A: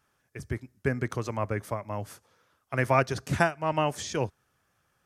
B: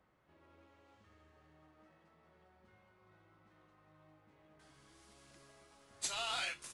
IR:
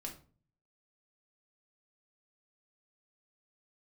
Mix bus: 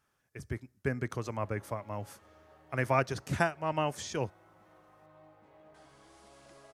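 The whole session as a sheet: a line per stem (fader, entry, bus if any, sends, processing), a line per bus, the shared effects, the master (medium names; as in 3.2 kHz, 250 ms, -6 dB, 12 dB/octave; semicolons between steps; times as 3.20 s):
-4.5 dB, 0.00 s, no send, none
+2.0 dB, 1.15 s, no send, peaking EQ 680 Hz +9.5 dB 1.5 oct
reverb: none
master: none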